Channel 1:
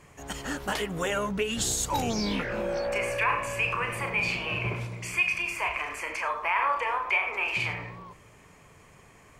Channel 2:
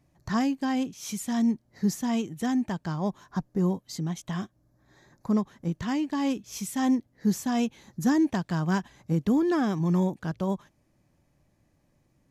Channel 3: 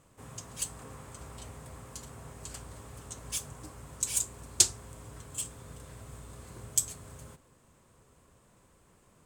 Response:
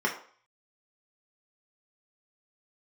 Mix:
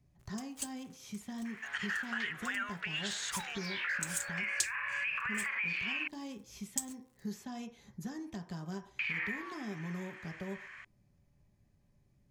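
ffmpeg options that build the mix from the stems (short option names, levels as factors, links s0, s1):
-filter_complex "[0:a]lowpass=3700,acompressor=threshold=0.0224:ratio=6,highpass=f=1700:t=q:w=3.7,adelay=1450,volume=1.33,asplit=3[s0][s1][s2];[s0]atrim=end=6.08,asetpts=PTS-STARTPTS,afade=t=out:st=6.076:d=0.004:c=hsin[s3];[s1]atrim=start=6.08:end=8.99,asetpts=PTS-STARTPTS,volume=0[s4];[s2]atrim=start=8.99,asetpts=PTS-STARTPTS,afade=t=in:d=0.004:c=hsin[s5];[s3][s4][s5]concat=n=3:v=0:a=1[s6];[1:a]lowshelf=f=120:g=9,acrossover=split=310|730|3600[s7][s8][s9][s10];[s7]acompressor=threshold=0.00891:ratio=4[s11];[s8]acompressor=threshold=0.0126:ratio=4[s12];[s9]acompressor=threshold=0.00501:ratio=4[s13];[s10]acompressor=threshold=0.00398:ratio=4[s14];[s11][s12][s13][s14]amix=inputs=4:normalize=0,volume=0.447,asplit=2[s15][s16];[s16]volume=0.178[s17];[2:a]equalizer=f=140:w=0.35:g=-11,aeval=exprs='sgn(val(0))*max(abs(val(0))-0.00447,0)':c=same,volume=0.75[s18];[s6][s15]amix=inputs=2:normalize=0,alimiter=limit=0.0708:level=0:latency=1:release=62,volume=1[s19];[3:a]atrim=start_sample=2205[s20];[s17][s20]afir=irnorm=-1:irlink=0[s21];[s18][s19][s21]amix=inputs=3:normalize=0,acompressor=threshold=0.0178:ratio=2"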